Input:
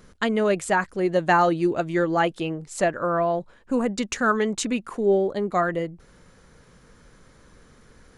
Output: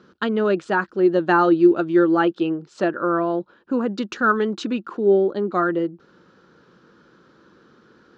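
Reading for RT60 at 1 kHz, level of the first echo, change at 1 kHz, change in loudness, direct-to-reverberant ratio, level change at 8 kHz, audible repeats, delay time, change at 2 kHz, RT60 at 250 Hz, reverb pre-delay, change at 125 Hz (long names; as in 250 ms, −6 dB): no reverb audible, no echo audible, +1.0 dB, +3.5 dB, no reverb audible, below −10 dB, no echo audible, no echo audible, +1.5 dB, no reverb audible, no reverb audible, −1.0 dB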